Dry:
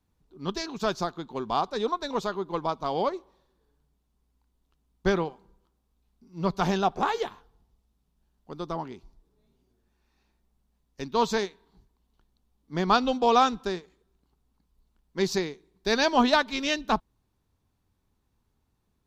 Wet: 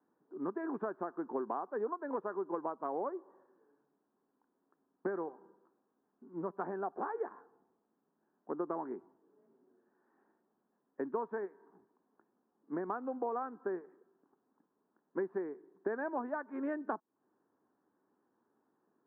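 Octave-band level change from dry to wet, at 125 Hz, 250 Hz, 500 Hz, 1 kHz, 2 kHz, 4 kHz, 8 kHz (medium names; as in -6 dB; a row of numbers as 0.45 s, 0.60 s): -19.5 dB, -10.0 dB, -9.5 dB, -13.5 dB, -15.5 dB, under -40 dB, under -35 dB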